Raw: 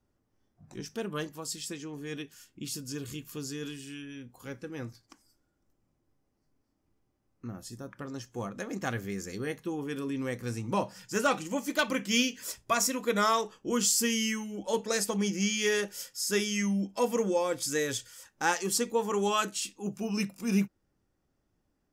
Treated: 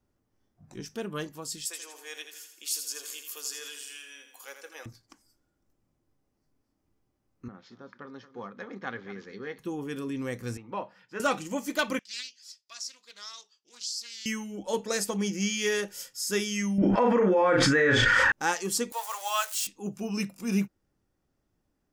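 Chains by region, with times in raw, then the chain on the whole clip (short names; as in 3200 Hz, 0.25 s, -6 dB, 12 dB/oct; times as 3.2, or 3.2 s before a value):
1.65–4.86 HPF 550 Hz 24 dB/oct + high shelf 4600 Hz +9.5 dB + feedback echo 82 ms, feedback 50%, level -8 dB
7.48–9.59 echo 0.227 s -14 dB + careless resampling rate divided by 3×, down none, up filtered + speaker cabinet 260–3700 Hz, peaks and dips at 320 Hz -8 dB, 640 Hz -9 dB, 2700 Hz -9 dB
10.57–11.2 HPF 690 Hz 6 dB/oct + air absorption 390 m
11.99–14.26 band-pass 4700 Hz, Q 4.1 + Doppler distortion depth 0.25 ms
16.78–18.32 synth low-pass 1700 Hz, resonance Q 2.4 + doubler 38 ms -5 dB + fast leveller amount 100%
18.92–19.67 switching spikes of -29 dBFS + steep high-pass 550 Hz 72 dB/oct
whole clip: dry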